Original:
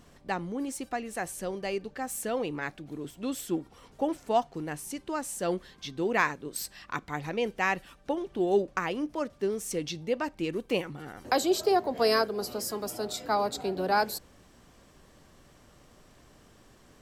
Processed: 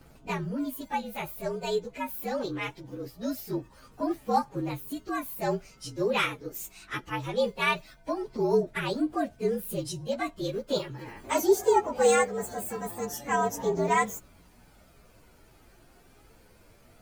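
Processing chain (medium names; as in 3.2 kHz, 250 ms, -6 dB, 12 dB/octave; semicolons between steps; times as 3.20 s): frequency axis rescaled in octaves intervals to 116%; phaser 0.22 Hz, delay 2.8 ms, feedback 27%; trim +3.5 dB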